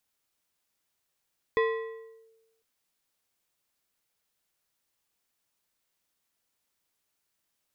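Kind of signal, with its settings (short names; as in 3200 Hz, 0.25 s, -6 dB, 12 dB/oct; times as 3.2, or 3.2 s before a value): FM tone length 1.05 s, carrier 450 Hz, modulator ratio 3.31, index 0.81, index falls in 0.73 s linear, decay 1.11 s, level -19.5 dB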